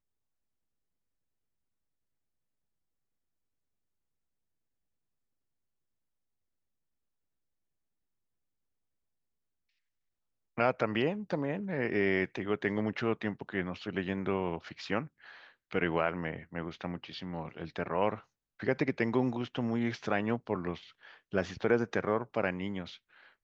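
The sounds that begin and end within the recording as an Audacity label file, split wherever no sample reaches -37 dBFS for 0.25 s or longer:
10.580000	15.050000	sound
15.710000	18.150000	sound
18.600000	20.740000	sound
21.330000	22.890000	sound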